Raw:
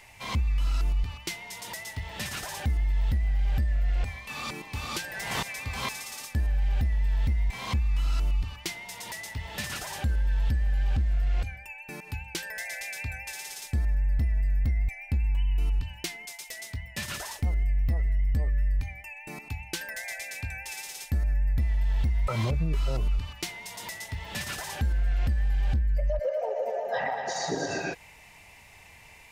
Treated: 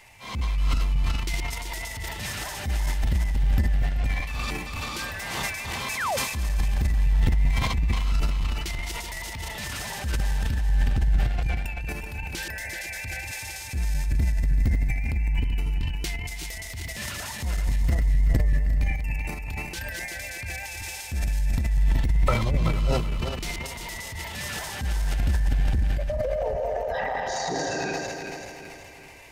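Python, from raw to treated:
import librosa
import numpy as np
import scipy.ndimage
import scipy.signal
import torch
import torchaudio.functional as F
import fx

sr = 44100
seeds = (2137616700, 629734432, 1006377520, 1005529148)

y = fx.reverse_delay_fb(x, sr, ms=191, feedback_pct=68, wet_db=-5)
y = fx.spec_paint(y, sr, seeds[0], shape='fall', start_s=5.97, length_s=0.2, low_hz=490.0, high_hz=2300.0, level_db=-26.0)
y = fx.transient(y, sr, attack_db=-6, sustain_db=10)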